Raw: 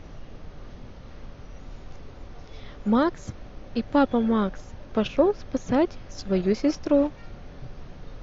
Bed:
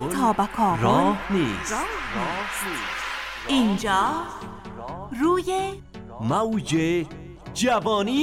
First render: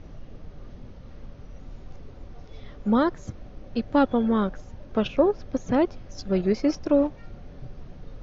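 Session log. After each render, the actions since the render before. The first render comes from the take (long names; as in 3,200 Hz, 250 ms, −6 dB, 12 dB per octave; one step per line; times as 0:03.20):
broadband denoise 6 dB, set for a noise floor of −44 dBFS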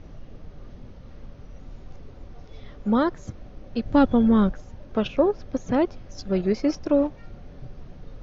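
0:03.85–0:04.52: bass and treble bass +9 dB, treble +3 dB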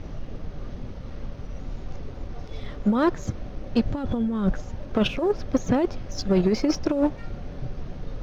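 compressor whose output falls as the input rises −22 dBFS, ratio −0.5
leveller curve on the samples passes 1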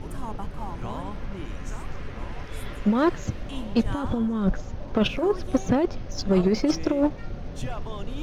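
mix in bed −16.5 dB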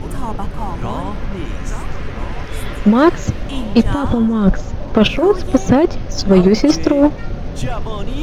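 level +10.5 dB
brickwall limiter −1 dBFS, peak gain reduction 1 dB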